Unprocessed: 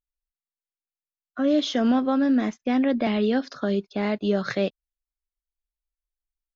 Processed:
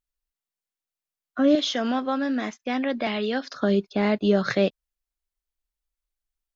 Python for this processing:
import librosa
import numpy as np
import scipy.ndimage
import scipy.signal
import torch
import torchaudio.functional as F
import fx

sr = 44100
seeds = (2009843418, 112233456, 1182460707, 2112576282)

y = fx.low_shelf(x, sr, hz=470.0, db=-11.5, at=(1.55, 3.6))
y = F.gain(torch.from_numpy(y), 3.0).numpy()